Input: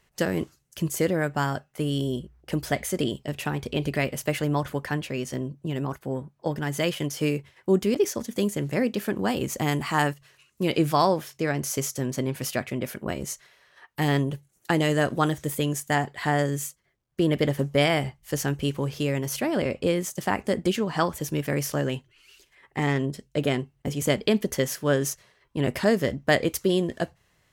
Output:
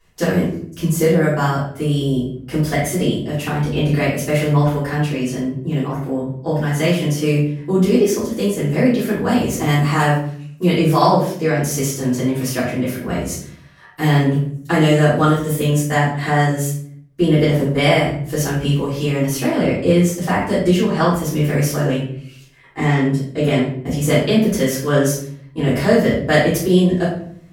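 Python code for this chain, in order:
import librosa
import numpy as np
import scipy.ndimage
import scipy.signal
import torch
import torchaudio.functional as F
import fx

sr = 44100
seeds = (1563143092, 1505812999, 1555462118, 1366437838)

y = fx.room_shoebox(x, sr, seeds[0], volume_m3=86.0, walls='mixed', distance_m=3.2)
y = y * librosa.db_to_amplitude(-5.0)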